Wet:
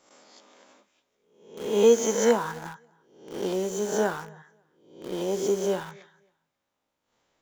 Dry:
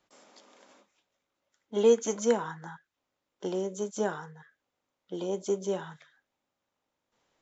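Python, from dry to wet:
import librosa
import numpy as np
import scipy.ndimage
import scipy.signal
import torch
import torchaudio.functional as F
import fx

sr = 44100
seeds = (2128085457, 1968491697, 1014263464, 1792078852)

p1 = fx.spec_swells(x, sr, rise_s=0.69)
p2 = fx.echo_feedback(p1, sr, ms=269, feedback_pct=20, wet_db=-23)
p3 = fx.quant_dither(p2, sr, seeds[0], bits=6, dither='none')
y = p2 + (p3 * librosa.db_to_amplitude(-7.5))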